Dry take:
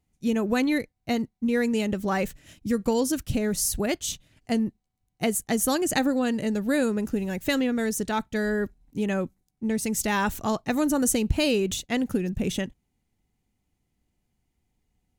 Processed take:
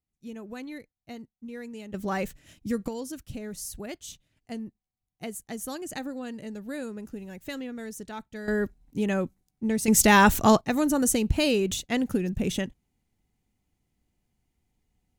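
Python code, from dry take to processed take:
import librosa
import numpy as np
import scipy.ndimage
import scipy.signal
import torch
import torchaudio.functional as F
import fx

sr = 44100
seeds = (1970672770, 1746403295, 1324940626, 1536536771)

y = fx.gain(x, sr, db=fx.steps((0.0, -15.5), (1.94, -3.5), (2.88, -11.5), (8.48, 0.0), (9.88, 8.0), (10.61, -0.5)))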